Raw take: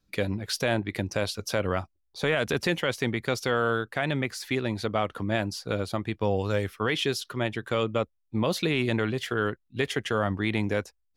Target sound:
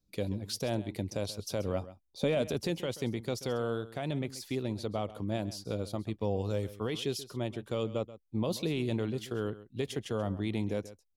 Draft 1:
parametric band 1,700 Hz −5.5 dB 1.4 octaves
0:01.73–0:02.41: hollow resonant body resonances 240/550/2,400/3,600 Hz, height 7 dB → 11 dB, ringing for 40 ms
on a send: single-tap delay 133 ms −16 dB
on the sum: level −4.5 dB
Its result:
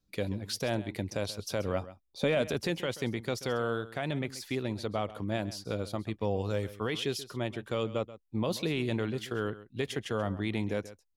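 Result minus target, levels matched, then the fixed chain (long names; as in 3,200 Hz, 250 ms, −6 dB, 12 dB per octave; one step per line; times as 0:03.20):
2,000 Hz band +5.0 dB
parametric band 1,700 Hz −13.5 dB 1.4 octaves
0:01.73–0:02.41: hollow resonant body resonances 240/550/2,400/3,600 Hz, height 7 dB → 11 dB, ringing for 40 ms
on a send: single-tap delay 133 ms −16 dB
on the sum: level −4.5 dB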